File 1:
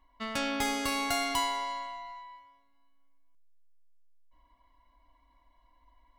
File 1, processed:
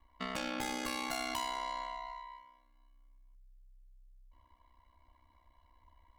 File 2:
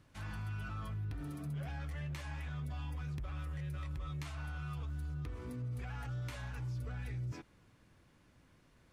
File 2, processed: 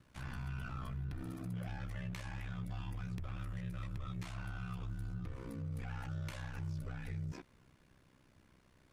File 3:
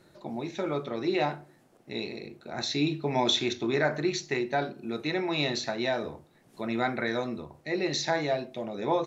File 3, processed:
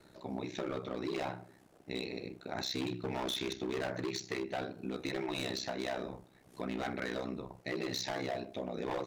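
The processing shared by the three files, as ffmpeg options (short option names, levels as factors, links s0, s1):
-af "asoftclip=type=hard:threshold=0.0473,acompressor=threshold=0.02:ratio=6,aeval=exprs='val(0)*sin(2*PI*32*n/s)':c=same,volume=1.26"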